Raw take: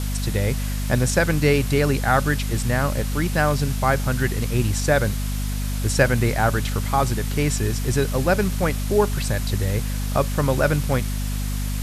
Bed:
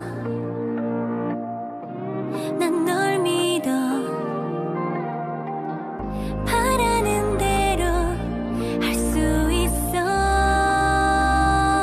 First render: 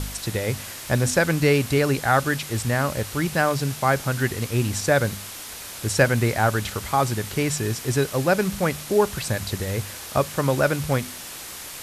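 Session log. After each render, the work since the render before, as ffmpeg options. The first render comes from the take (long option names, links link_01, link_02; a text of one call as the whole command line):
ffmpeg -i in.wav -af "bandreject=frequency=50:width_type=h:width=4,bandreject=frequency=100:width_type=h:width=4,bandreject=frequency=150:width_type=h:width=4,bandreject=frequency=200:width_type=h:width=4,bandreject=frequency=250:width_type=h:width=4" out.wav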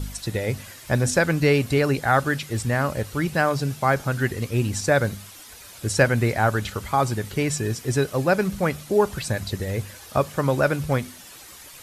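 ffmpeg -i in.wav -af "afftdn=noise_reduction=10:noise_floor=-37" out.wav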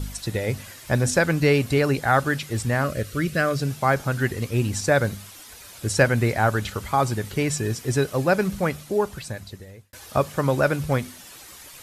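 ffmpeg -i in.wav -filter_complex "[0:a]asettb=1/sr,asplit=3[link_01][link_02][link_03];[link_01]atrim=end=2.844[link_04];[link_02]atrim=start=2.84:end=3.62,asetpts=PTS-STARTPTS,afade=type=in:duration=0.004:curve=qsin,afade=type=out:start_time=0.776:duration=0.004:curve=qsin,asuperstop=centerf=880:order=4:qfactor=2[link_05];[link_03]atrim=start=3.616[link_06];[link_04][link_05]acrossfade=duration=0.004:curve1=hsin:curve2=qsin[link_07];[link_07][link_06]acrossfade=duration=0.004:curve1=qsin:curve2=hsin,asplit=2[link_08][link_09];[link_08]atrim=end=9.93,asetpts=PTS-STARTPTS,afade=type=out:start_time=8.53:duration=1.4[link_10];[link_09]atrim=start=9.93,asetpts=PTS-STARTPTS,afade=type=in:duration=0.004:curve=hsin[link_11];[link_10][link_11]concat=n=2:v=0:a=1" out.wav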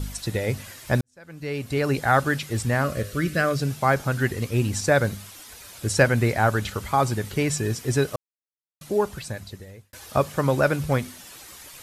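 ffmpeg -i in.wav -filter_complex "[0:a]asettb=1/sr,asplit=3[link_01][link_02][link_03];[link_01]atrim=end=2.834[link_04];[link_02]atrim=start=2.83:end=3.44,asetpts=PTS-STARTPTS,afade=type=in:duration=0.004:curve=qsin,afade=type=out:start_time=0.606:duration=0.004:curve=qsin,bandreject=frequency=101.4:width_type=h:width=4,bandreject=frequency=202.8:width_type=h:width=4,bandreject=frequency=304.2:width_type=h:width=4,bandreject=frequency=405.6:width_type=h:width=4,bandreject=frequency=507:width_type=h:width=4,bandreject=frequency=608.4:width_type=h:width=4,bandreject=frequency=709.8:width_type=h:width=4,bandreject=frequency=811.2:width_type=h:width=4,bandreject=frequency=912.6:width_type=h:width=4,bandreject=frequency=1014:width_type=h:width=4,bandreject=frequency=1115.4:width_type=h:width=4,bandreject=frequency=1216.8:width_type=h:width=4,bandreject=frequency=1318.2:width_type=h:width=4,bandreject=frequency=1419.6:width_type=h:width=4,bandreject=frequency=1521:width_type=h:width=4,bandreject=frequency=1622.4:width_type=h:width=4,bandreject=frequency=1723.8:width_type=h:width=4,bandreject=frequency=1825.2:width_type=h:width=4,bandreject=frequency=1926.6:width_type=h:width=4,bandreject=frequency=2028:width_type=h:width=4,bandreject=frequency=2129.4:width_type=h:width=4,bandreject=frequency=2230.8:width_type=h:width=4,bandreject=frequency=2332.2:width_type=h:width=4,bandreject=frequency=2433.6:width_type=h:width=4,bandreject=frequency=2535:width_type=h:width=4,bandreject=frequency=2636.4:width_type=h:width=4,bandreject=frequency=2737.8:width_type=h:width=4,bandreject=frequency=2839.2:width_type=h:width=4,bandreject=frequency=2940.6:width_type=h:width=4[link_05];[link_03]atrim=start=3.436[link_06];[link_04][link_05]acrossfade=duration=0.004:curve1=hsin:curve2=qsin[link_07];[link_07][link_06]acrossfade=duration=0.004:curve1=qsin:curve2=hsin,asplit=4[link_08][link_09][link_10][link_11];[link_08]atrim=end=1.01,asetpts=PTS-STARTPTS,afade=type=out:start_time=1.006:duration=0.004:curve=hsin[link_12];[link_09]atrim=start=1.01:end=8.16,asetpts=PTS-STARTPTS,afade=type=in:duration=0.97:curve=qua,afade=type=out:start_time=7.146:duration=0.004:curve=hsin[link_13];[link_10]atrim=start=8.16:end=8.81,asetpts=PTS-STARTPTS,volume=0[link_14];[link_11]atrim=start=8.81,asetpts=PTS-STARTPTS,afade=type=in:duration=0.004:curve=hsin[link_15];[link_12][link_13][link_14][link_15]concat=n=4:v=0:a=1" out.wav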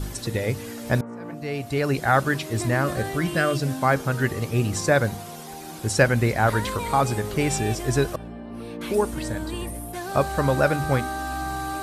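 ffmpeg -i in.wav -i bed.wav -filter_complex "[1:a]volume=-11dB[link_01];[0:a][link_01]amix=inputs=2:normalize=0" out.wav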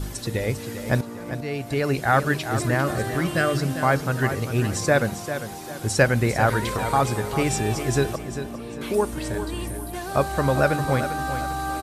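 ffmpeg -i in.wav -af "aecho=1:1:398|796|1194|1592:0.316|0.111|0.0387|0.0136" out.wav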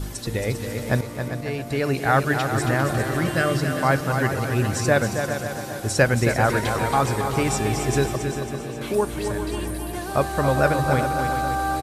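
ffmpeg -i in.wav -af "aecho=1:1:273|546|819|1092|1365|1638:0.422|0.223|0.118|0.0628|0.0333|0.0176" out.wav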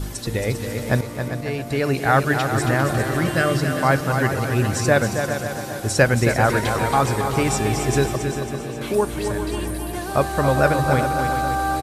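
ffmpeg -i in.wav -af "volume=2dB" out.wav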